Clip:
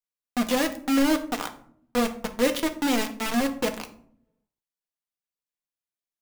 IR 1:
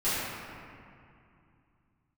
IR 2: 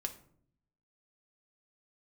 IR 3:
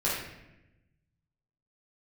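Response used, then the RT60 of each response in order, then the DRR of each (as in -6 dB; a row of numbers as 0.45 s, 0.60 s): 2; 2.5 s, 0.60 s, 0.95 s; -15.5 dB, 5.0 dB, -9.0 dB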